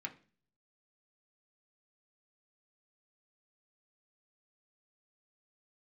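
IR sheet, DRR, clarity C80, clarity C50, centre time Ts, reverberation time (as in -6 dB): 1.0 dB, 21.0 dB, 16.0 dB, 8 ms, 0.40 s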